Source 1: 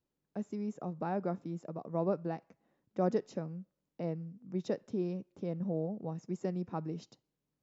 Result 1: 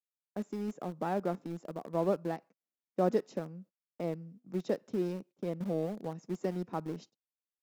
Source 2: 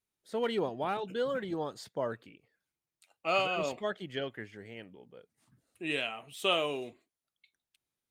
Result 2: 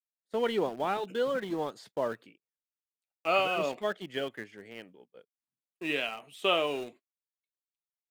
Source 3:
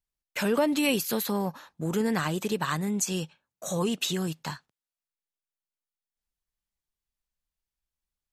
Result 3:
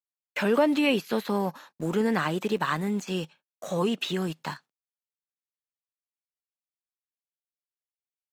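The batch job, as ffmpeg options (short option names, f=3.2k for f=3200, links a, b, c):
-filter_complex "[0:a]agate=range=-31dB:threshold=-52dB:ratio=16:detection=peak,highpass=180,acrossover=split=3700[a][b];[b]acompressor=threshold=-51dB:ratio=4:attack=1:release=60[c];[a][c]amix=inputs=2:normalize=0,asplit=2[d][e];[e]aeval=exprs='val(0)*gte(abs(val(0)),0.0133)':c=same,volume=-8.5dB[f];[d][f]amix=inputs=2:normalize=0"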